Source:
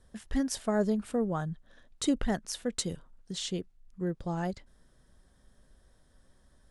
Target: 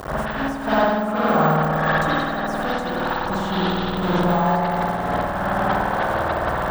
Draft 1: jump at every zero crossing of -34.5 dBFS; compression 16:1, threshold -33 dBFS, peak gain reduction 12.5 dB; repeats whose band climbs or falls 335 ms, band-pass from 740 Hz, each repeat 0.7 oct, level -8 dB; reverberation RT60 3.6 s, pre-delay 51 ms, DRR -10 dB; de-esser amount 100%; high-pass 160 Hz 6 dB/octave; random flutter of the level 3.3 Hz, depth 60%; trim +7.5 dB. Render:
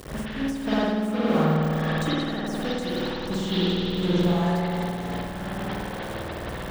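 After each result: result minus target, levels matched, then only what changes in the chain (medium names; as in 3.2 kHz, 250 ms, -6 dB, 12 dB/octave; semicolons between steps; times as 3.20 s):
1 kHz band -7.0 dB; jump at every zero crossing: distortion -5 dB
add after compression: high-order bell 1 kHz +10.5 dB 1.7 oct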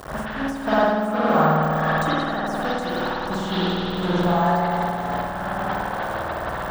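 jump at every zero crossing: distortion -5 dB
change: jump at every zero crossing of -27 dBFS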